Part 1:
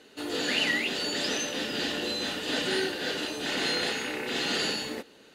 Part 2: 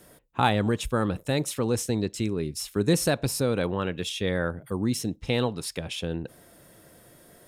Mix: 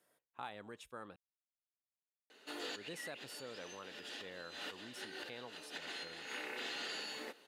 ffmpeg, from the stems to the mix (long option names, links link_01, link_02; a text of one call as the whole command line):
ffmpeg -i stem1.wav -i stem2.wav -filter_complex "[0:a]adelay=2300,volume=-1dB[link_01];[1:a]volume=-14.5dB,asplit=3[link_02][link_03][link_04];[link_02]atrim=end=1.16,asetpts=PTS-STARTPTS,afade=type=out:start_time=1.156:duration=0.004:curve=hsin[link_05];[link_03]atrim=start=1.16:end=2.75,asetpts=PTS-STARTPTS,volume=0[link_06];[link_04]atrim=start=2.75,asetpts=PTS-STARTPTS,afade=type=in:duration=0.004:curve=hsin[link_07];[link_05][link_06][link_07]concat=n=3:v=0:a=1,asplit=2[link_08][link_09];[link_09]apad=whole_len=337252[link_10];[link_01][link_10]sidechaincompress=threshold=-57dB:ratio=5:attack=16:release=109[link_11];[link_11][link_08]amix=inputs=2:normalize=0,highpass=frequency=1200:poles=1,highshelf=frequency=2500:gain=-8.5,acompressor=threshold=-40dB:ratio=6" out.wav